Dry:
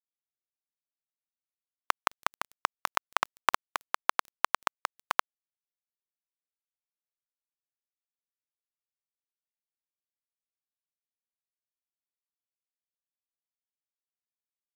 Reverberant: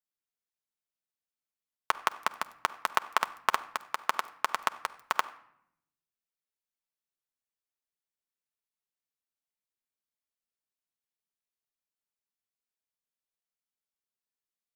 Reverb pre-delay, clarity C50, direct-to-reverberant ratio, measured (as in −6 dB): 4 ms, 17.0 dB, 7.5 dB